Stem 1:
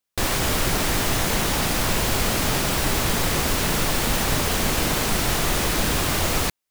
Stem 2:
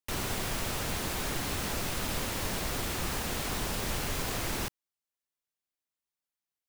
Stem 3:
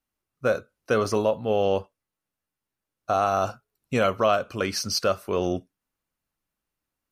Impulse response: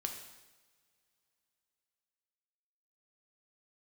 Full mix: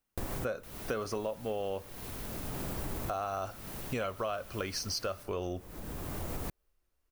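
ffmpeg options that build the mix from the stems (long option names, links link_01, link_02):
-filter_complex "[0:a]equalizer=frequency=3900:width=0.32:gain=-13.5,alimiter=limit=-17.5dB:level=0:latency=1:release=255,volume=-2.5dB[link_01];[1:a]aexciter=amount=1.9:drive=6.4:freq=10000,adelay=550,volume=-14dB[link_02];[2:a]asubboost=boost=8.5:cutoff=54,volume=-0.5dB,asplit=3[link_03][link_04][link_05];[link_04]volume=-23dB[link_06];[link_05]apad=whole_len=295794[link_07];[link_01][link_07]sidechaincompress=threshold=-38dB:ratio=12:attack=7.9:release=855[link_08];[3:a]atrim=start_sample=2205[link_09];[link_06][link_09]afir=irnorm=-1:irlink=0[link_10];[link_08][link_02][link_03][link_10]amix=inputs=4:normalize=0,acompressor=threshold=-34dB:ratio=4"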